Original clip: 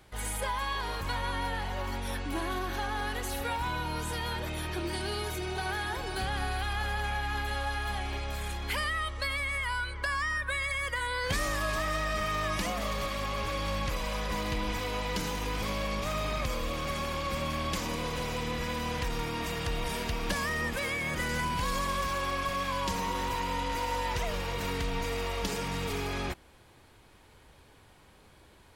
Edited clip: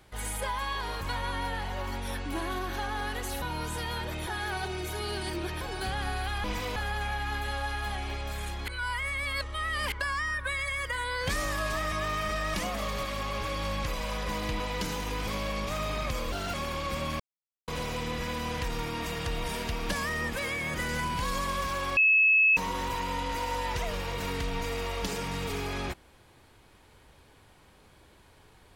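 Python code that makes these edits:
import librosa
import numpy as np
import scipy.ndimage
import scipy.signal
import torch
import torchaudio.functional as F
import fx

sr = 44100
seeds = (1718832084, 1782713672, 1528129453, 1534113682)

y = fx.edit(x, sr, fx.cut(start_s=3.42, length_s=0.35),
    fx.reverse_span(start_s=4.62, length_s=1.34),
    fx.reverse_span(start_s=8.71, length_s=1.24),
    fx.reverse_span(start_s=11.95, length_s=0.62),
    fx.move(start_s=14.63, length_s=0.32, to_s=6.79),
    fx.speed_span(start_s=16.67, length_s=0.27, speed=1.24),
    fx.silence(start_s=17.6, length_s=0.48),
    fx.bleep(start_s=22.37, length_s=0.6, hz=2590.0, db=-18.0), tone=tone)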